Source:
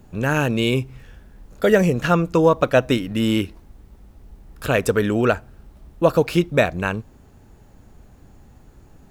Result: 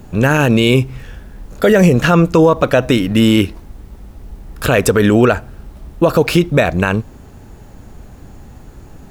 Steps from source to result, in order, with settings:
boost into a limiter +12 dB
level −1 dB

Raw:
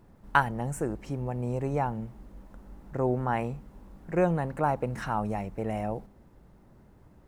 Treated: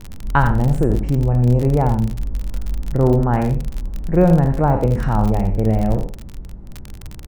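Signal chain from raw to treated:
peak hold with a decay on every bin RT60 0.36 s
spectral tilt −4 dB per octave
single-tap delay 82 ms −8 dB
surface crackle 41 per second −25 dBFS
level +4.5 dB

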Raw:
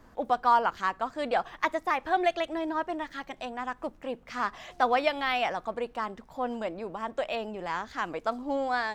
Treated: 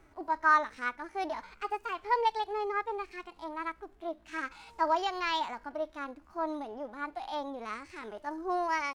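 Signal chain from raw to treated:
harmonic and percussive parts rebalanced percussive −15 dB
pitch shifter +4.5 semitones
level −1.5 dB

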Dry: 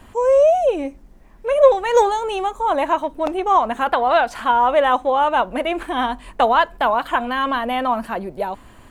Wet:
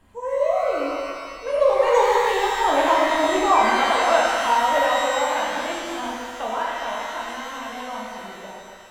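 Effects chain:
source passing by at 0:03.02, 5 m/s, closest 5.3 metres
reverb with rising layers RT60 2 s, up +12 semitones, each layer −8 dB, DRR −4.5 dB
level −5 dB

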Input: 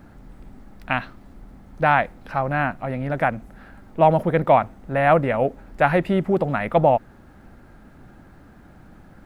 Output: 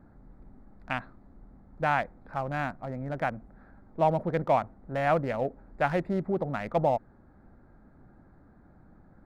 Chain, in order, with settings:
adaptive Wiener filter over 15 samples
level −8.5 dB

